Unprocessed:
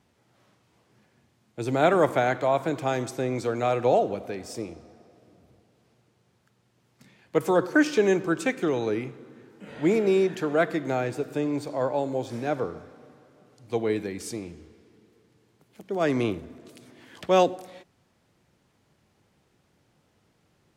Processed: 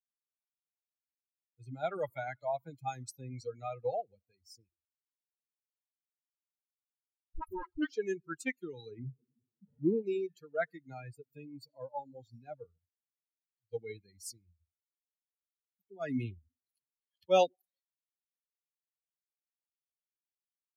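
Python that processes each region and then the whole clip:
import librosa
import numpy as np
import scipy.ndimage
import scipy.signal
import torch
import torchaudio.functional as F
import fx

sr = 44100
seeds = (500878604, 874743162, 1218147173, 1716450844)

y = fx.chain(x, sr, fx.lower_of_two(delay_ms=3.1),
    fx.high_shelf(hz=3000.0, db=-9.5),
    fx.dispersion(late='highs', ms=63.0, hz=410.0), at=(4.69, 7.9))
y = fx.chain(y, sr, fx.lowpass(hz=1000.0, slope=12),
    fx.power_curve(exponent=0.7), at=(8.99, 10.02))
y = fx.bin_expand(y, sr, power=3.0)
y = fx.notch(y, sr, hz=1100.0, q=5.4)
y = fx.rider(y, sr, range_db=5, speed_s=0.5)
y = y * 10.0 ** (-6.0 / 20.0)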